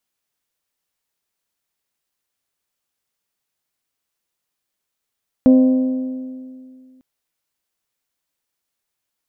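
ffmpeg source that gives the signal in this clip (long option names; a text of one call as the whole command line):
ffmpeg -f lavfi -i "aevalsrc='0.501*pow(10,-3*t/2.24)*sin(2*PI*258*t)+0.158*pow(10,-3*t/1.819)*sin(2*PI*516*t)+0.0501*pow(10,-3*t/1.723)*sin(2*PI*619.2*t)+0.0158*pow(10,-3*t/1.611)*sin(2*PI*774*t)+0.00501*pow(10,-3*t/1.478)*sin(2*PI*1032*t)':duration=1.55:sample_rate=44100" out.wav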